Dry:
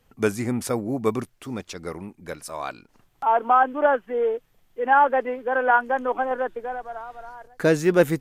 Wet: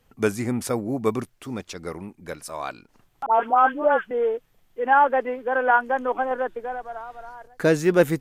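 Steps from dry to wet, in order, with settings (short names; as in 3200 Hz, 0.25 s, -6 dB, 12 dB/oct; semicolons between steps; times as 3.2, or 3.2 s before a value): 3.26–4.11 dispersion highs, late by 93 ms, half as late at 1200 Hz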